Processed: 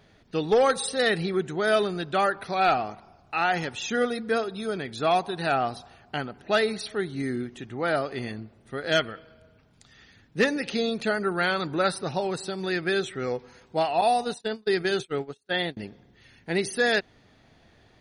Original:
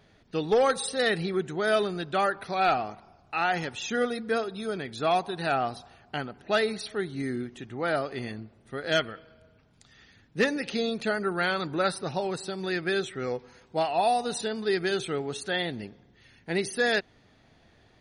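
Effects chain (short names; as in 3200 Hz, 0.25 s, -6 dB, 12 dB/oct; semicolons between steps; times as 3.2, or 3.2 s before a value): 14.01–15.77 gate -30 dBFS, range -38 dB; gain +2 dB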